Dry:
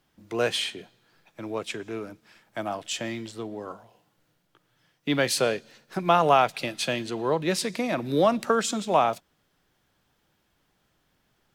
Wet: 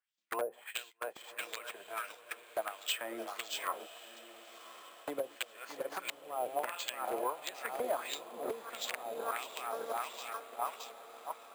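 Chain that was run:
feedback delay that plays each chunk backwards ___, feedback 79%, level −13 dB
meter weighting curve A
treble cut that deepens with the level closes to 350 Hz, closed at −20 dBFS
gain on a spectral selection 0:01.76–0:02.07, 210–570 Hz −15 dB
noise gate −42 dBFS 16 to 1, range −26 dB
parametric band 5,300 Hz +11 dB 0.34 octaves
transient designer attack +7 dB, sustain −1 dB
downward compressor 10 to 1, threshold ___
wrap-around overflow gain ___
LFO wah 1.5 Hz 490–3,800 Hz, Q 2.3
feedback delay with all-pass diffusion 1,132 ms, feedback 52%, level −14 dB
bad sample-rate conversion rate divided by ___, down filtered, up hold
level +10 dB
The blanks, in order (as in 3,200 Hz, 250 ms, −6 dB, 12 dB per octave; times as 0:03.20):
307 ms, −36 dBFS, 28.5 dB, 4×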